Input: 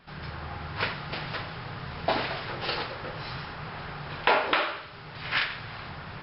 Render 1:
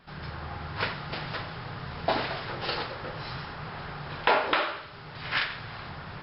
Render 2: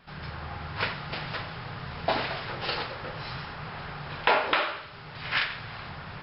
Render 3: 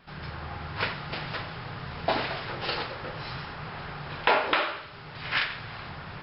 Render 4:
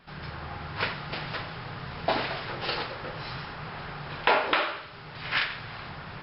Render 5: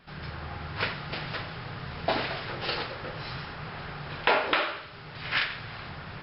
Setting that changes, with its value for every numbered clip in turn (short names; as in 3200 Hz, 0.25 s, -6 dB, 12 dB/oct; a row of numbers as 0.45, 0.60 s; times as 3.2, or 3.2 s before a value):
bell, frequency: 2500, 330, 11000, 84, 950 Hz